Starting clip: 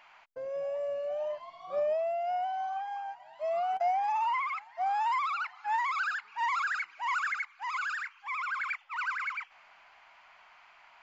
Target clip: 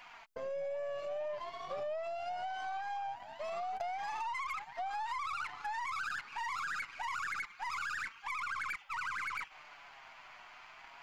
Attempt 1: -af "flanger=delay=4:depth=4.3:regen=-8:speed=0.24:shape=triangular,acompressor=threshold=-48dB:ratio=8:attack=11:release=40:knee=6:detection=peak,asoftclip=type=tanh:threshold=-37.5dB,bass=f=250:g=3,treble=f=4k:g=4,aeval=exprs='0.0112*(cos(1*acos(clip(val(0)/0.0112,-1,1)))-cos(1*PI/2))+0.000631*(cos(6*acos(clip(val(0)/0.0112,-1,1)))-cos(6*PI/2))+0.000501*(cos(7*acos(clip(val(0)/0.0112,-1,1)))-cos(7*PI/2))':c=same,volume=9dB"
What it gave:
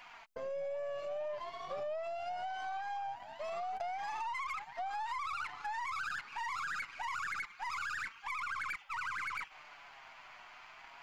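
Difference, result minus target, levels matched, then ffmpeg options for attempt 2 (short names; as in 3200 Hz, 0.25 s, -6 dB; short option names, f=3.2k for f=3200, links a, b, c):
soft clip: distortion +16 dB
-af "flanger=delay=4:depth=4.3:regen=-8:speed=0.24:shape=triangular,acompressor=threshold=-48dB:ratio=8:attack=11:release=40:knee=6:detection=peak,asoftclip=type=tanh:threshold=-29dB,bass=f=250:g=3,treble=f=4k:g=4,aeval=exprs='0.0112*(cos(1*acos(clip(val(0)/0.0112,-1,1)))-cos(1*PI/2))+0.000631*(cos(6*acos(clip(val(0)/0.0112,-1,1)))-cos(6*PI/2))+0.000501*(cos(7*acos(clip(val(0)/0.0112,-1,1)))-cos(7*PI/2))':c=same,volume=9dB"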